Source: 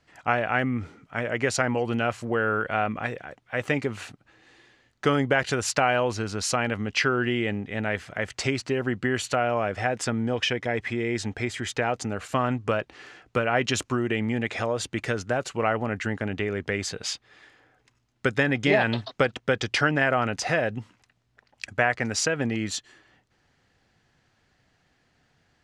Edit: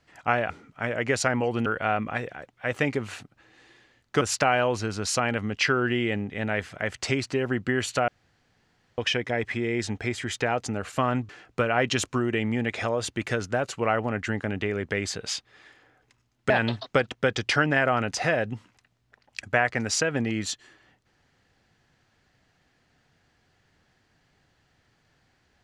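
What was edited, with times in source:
0.5–0.84 cut
2–2.55 cut
5.1–5.57 cut
9.44–10.34 room tone
12.65–13.06 cut
18.27–18.75 cut

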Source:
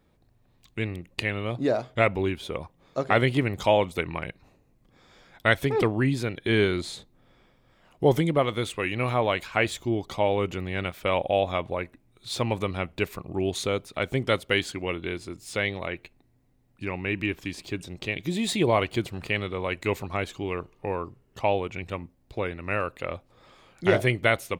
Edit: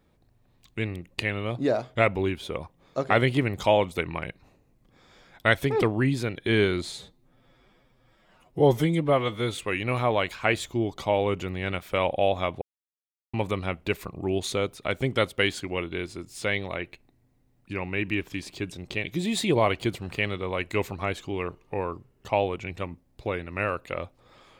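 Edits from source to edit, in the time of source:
6.92–8.69 stretch 1.5×
11.73–12.45 mute

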